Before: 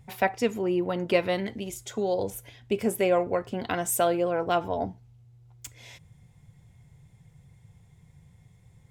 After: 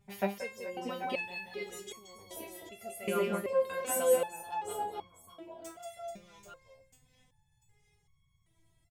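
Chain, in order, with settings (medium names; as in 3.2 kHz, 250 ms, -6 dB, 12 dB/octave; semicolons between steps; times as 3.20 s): reverse bouncing-ball echo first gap 180 ms, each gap 1.4×, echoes 5; 0.95–2.35 s: crackle 510 per s -47 dBFS; resonator arpeggio 2.6 Hz 200–1100 Hz; trim +7 dB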